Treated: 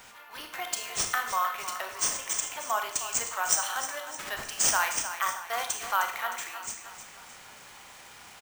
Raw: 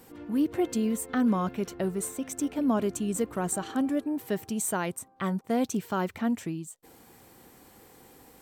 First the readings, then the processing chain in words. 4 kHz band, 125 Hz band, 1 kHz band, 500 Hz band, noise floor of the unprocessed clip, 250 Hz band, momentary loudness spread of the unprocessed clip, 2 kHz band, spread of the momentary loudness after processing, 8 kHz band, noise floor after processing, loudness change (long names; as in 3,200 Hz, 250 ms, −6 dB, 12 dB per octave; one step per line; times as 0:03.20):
+11.5 dB, −18.5 dB, +5.5 dB, −9.0 dB, −56 dBFS, −26.5 dB, 6 LU, +9.0 dB, 21 LU, +8.5 dB, −50 dBFS, +0.5 dB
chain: high-pass filter 900 Hz 24 dB per octave
repeating echo 309 ms, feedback 48%, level −11 dB
four-comb reverb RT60 0.56 s, combs from 26 ms, DRR 5 dB
bad sample-rate conversion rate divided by 3×, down none, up hold
level +7 dB